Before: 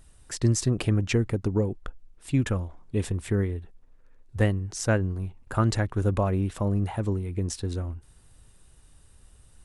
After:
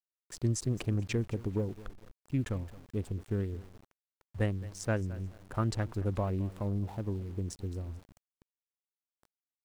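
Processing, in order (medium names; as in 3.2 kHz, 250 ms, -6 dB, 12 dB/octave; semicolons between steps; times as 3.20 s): local Wiener filter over 25 samples; feedback delay 217 ms, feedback 30%, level -18.5 dB; small samples zeroed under -43.5 dBFS; trim -7.5 dB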